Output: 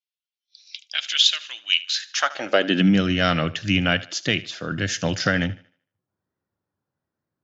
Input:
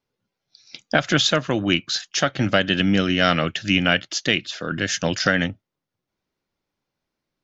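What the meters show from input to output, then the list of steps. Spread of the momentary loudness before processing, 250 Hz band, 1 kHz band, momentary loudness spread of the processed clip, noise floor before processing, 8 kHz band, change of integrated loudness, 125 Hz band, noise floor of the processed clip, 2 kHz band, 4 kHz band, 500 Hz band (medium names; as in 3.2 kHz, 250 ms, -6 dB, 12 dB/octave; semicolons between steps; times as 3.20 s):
5 LU, -1.0 dB, -2.5 dB, 11 LU, -84 dBFS, no reading, -1.0 dB, -0.5 dB, under -85 dBFS, -2.5 dB, +1.0 dB, -2.5 dB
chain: high-pass sweep 3 kHz -> 92 Hz, 1.85–3.08 s; spectral noise reduction 11 dB; thinning echo 76 ms, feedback 37%, high-pass 200 Hz, level -18 dB; trim -2.5 dB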